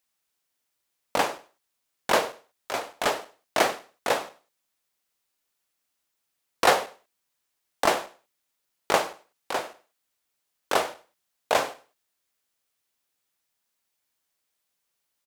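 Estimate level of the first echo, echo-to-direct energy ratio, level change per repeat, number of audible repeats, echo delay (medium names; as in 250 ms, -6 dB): -21.5 dB, -21.0 dB, -10.0 dB, 2, 98 ms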